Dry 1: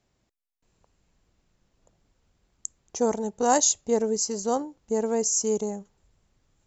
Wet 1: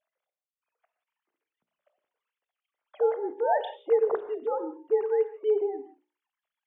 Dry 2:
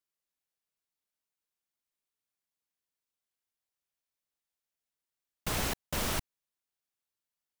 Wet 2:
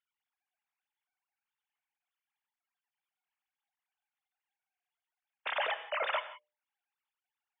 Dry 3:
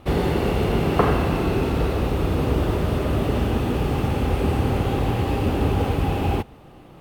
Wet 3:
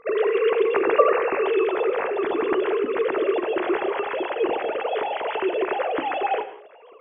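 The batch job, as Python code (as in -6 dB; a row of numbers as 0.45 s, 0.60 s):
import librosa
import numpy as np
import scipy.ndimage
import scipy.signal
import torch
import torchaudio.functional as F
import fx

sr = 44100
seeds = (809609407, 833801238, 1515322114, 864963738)

y = fx.sine_speech(x, sr)
y = fx.hum_notches(y, sr, base_hz=60, count=10)
y = fx.rev_gated(y, sr, seeds[0], gate_ms=200, shape='flat', drr_db=11.0)
y = y * 10.0 ** (-1.5 / 20.0)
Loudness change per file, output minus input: -2.5 LU, -1.0 LU, -0.5 LU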